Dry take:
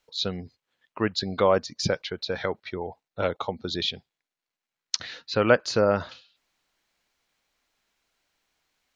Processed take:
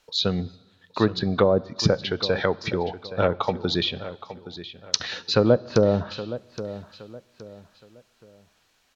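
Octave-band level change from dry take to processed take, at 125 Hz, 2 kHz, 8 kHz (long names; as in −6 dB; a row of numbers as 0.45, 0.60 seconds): +7.5 dB, −1.0 dB, can't be measured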